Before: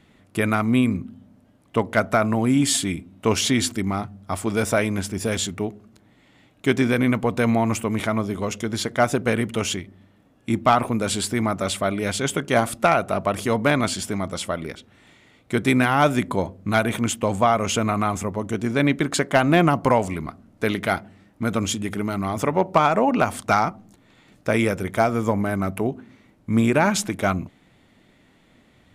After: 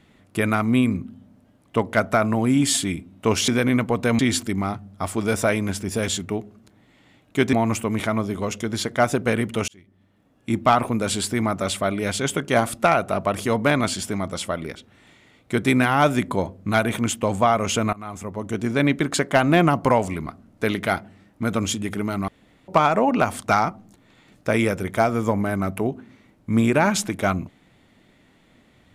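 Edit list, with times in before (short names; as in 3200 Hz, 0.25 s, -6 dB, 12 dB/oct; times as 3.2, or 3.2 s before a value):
6.82–7.53 move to 3.48
9.68–10.58 fade in
17.93–18.6 fade in, from -22.5 dB
22.28–22.68 room tone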